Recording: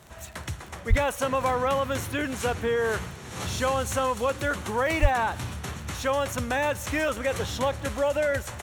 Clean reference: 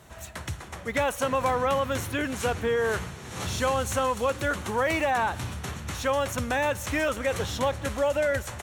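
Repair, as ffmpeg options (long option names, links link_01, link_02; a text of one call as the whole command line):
ffmpeg -i in.wav -filter_complex "[0:a]adeclick=threshold=4,asplit=3[link_01][link_02][link_03];[link_01]afade=type=out:start_time=0.89:duration=0.02[link_04];[link_02]highpass=frequency=140:width=0.5412,highpass=frequency=140:width=1.3066,afade=type=in:start_time=0.89:duration=0.02,afade=type=out:start_time=1.01:duration=0.02[link_05];[link_03]afade=type=in:start_time=1.01:duration=0.02[link_06];[link_04][link_05][link_06]amix=inputs=3:normalize=0,asplit=3[link_07][link_08][link_09];[link_07]afade=type=out:start_time=5.01:duration=0.02[link_10];[link_08]highpass=frequency=140:width=0.5412,highpass=frequency=140:width=1.3066,afade=type=in:start_time=5.01:duration=0.02,afade=type=out:start_time=5.13:duration=0.02[link_11];[link_09]afade=type=in:start_time=5.13:duration=0.02[link_12];[link_10][link_11][link_12]amix=inputs=3:normalize=0" out.wav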